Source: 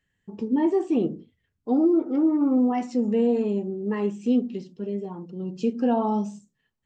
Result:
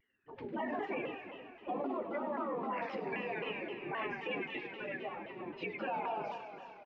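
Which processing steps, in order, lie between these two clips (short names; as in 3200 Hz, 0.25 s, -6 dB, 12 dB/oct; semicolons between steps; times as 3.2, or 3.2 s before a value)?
bin magnitudes rounded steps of 30 dB; formant shift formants -2 st; LPF 2600 Hz 24 dB/oct; notches 50/100/150/200/250 Hz; thin delay 98 ms, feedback 77%, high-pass 1500 Hz, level -9.5 dB; spectral gate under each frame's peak -10 dB weak; low shelf 220 Hz -12 dB; limiter -37 dBFS, peak gain reduction 11 dB; notch 460 Hz, Q 15; on a send: feedback echo 0.359 s, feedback 48%, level -12 dB; on the sum: shaped vibrato saw down 3.8 Hz, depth 160 cents; gain +8 dB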